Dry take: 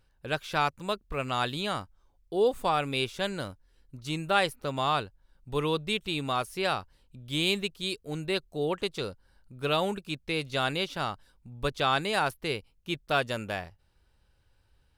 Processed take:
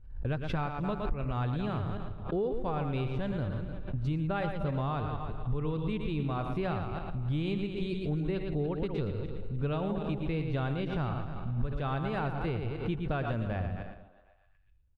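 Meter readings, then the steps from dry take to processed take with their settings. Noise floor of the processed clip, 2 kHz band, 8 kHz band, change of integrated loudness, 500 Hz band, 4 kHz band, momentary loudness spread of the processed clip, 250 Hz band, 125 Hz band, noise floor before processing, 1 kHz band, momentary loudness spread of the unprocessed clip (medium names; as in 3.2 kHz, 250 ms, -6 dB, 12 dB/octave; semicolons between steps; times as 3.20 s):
-61 dBFS, -10.5 dB, under -25 dB, -3.5 dB, -4.5 dB, -16.0 dB, 4 LU, +2.0 dB, +7.0 dB, -68 dBFS, -7.0 dB, 10 LU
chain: backward echo that repeats 152 ms, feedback 44%, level -10.5 dB; RIAA curve playback; gate with hold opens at -32 dBFS; tone controls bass +3 dB, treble -11 dB; delay 113 ms -8.5 dB; compression, threshold -28 dBFS, peak gain reduction 16 dB; on a send: repeats whose band climbs or falls 125 ms, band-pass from 190 Hz, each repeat 0.7 oct, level -12 dB; on the sum: swell ahead of each attack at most 83 dB/s; trim -1 dB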